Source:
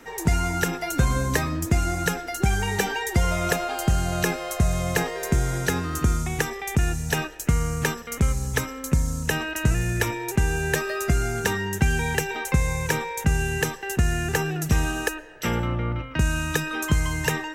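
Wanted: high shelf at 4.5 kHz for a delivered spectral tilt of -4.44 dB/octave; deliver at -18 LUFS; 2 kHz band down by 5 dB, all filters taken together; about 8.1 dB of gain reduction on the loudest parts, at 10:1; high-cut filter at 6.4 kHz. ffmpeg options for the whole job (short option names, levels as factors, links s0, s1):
-af "lowpass=6400,equalizer=f=2000:t=o:g=-8,highshelf=f=4500:g=8,acompressor=threshold=0.0631:ratio=10,volume=3.98"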